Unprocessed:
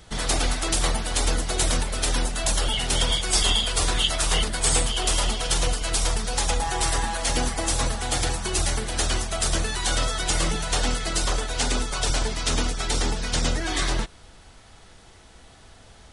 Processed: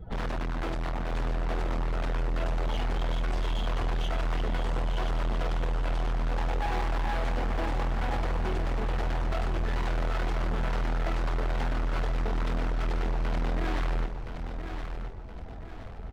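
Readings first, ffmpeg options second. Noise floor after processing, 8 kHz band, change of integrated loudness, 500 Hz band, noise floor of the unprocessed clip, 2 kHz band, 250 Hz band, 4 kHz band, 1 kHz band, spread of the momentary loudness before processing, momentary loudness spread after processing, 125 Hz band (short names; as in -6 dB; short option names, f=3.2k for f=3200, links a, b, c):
-39 dBFS, -29.5 dB, -7.5 dB, -4.5 dB, -50 dBFS, -8.0 dB, -4.0 dB, -18.5 dB, -5.0 dB, 4 LU, 7 LU, -2.5 dB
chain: -filter_complex "[0:a]acompressor=threshold=-24dB:ratio=6,afftdn=nr=20:nf=-47,asoftclip=type=tanh:threshold=-25.5dB,lowpass=1.3k,asoftclip=type=hard:threshold=-38dB,asplit=2[a][b];[b]aecho=0:1:1020|2040|3060|4080|5100:0.398|0.167|0.0702|0.0295|0.0124[c];[a][c]amix=inputs=2:normalize=0,volume=9dB"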